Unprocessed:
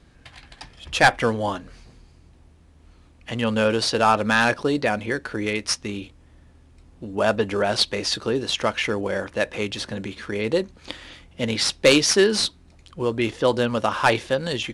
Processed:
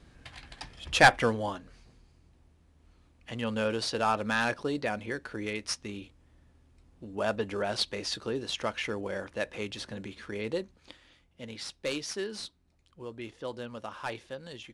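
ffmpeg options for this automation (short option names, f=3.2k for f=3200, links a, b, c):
-af "volume=-2.5dB,afade=t=out:st=1.01:d=0.53:silence=0.446684,afade=t=out:st=10.43:d=0.58:silence=0.375837"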